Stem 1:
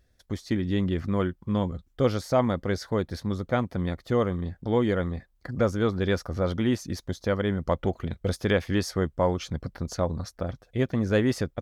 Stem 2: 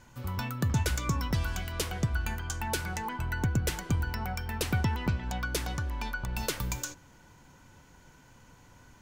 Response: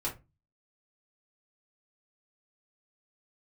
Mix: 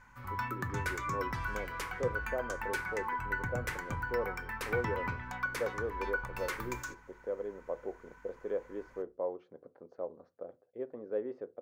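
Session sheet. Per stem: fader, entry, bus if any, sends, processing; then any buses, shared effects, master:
−4.0 dB, 0.00 s, send −15.5 dB, four-pole ladder band-pass 520 Hz, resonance 45%
−13.5 dB, 0.00 s, send −9.5 dB, mains hum 50 Hz, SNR 22 dB; flat-topped bell 1,400 Hz +13.5 dB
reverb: on, RT60 0.25 s, pre-delay 4 ms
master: no processing

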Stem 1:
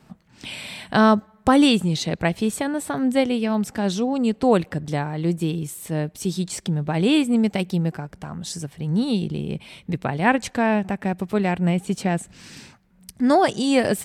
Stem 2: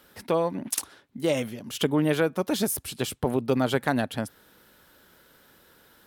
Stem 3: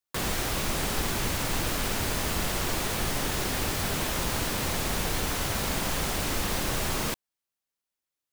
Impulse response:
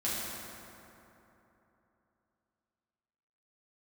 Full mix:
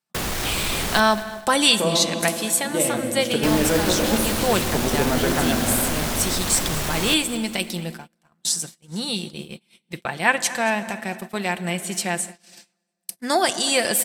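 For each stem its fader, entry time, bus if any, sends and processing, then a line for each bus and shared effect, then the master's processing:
−1.5 dB, 0.00 s, send −19 dB, echo send −18 dB, spectral tilt +4 dB per octave; comb filter 5.8 ms, depth 35%
−3.5 dB, 1.50 s, send −4.5 dB, no echo send, no processing
+2.5 dB, 0.00 s, muted 0:01.00–0:03.43, no send, echo send −21.5 dB, sine wavefolder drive 8 dB, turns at −15 dBFS; automatic ducking −9 dB, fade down 0.20 s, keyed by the first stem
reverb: on, RT60 3.2 s, pre-delay 5 ms
echo: repeating echo 228 ms, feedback 46%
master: noise gate −32 dBFS, range −30 dB

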